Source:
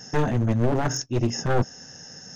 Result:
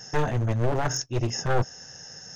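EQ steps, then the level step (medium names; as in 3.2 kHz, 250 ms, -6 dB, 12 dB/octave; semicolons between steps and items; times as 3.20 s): peaking EQ 240 Hz -9.5 dB 0.95 oct; 0.0 dB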